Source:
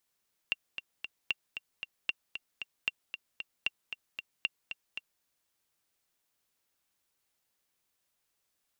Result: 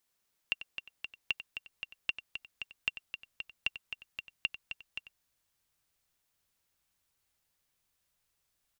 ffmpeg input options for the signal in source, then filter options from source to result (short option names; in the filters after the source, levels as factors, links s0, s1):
-f lavfi -i "aevalsrc='pow(10,(-15.5-9*gte(mod(t,3*60/229),60/229))/20)*sin(2*PI*2760*mod(t,60/229))*exp(-6.91*mod(t,60/229)/0.03)':d=4.71:s=44100"
-filter_complex "[0:a]asubboost=boost=2.5:cutoff=160,asplit=2[s0][s1];[s1]adelay=93.29,volume=0.224,highshelf=f=4000:g=-2.1[s2];[s0][s2]amix=inputs=2:normalize=0"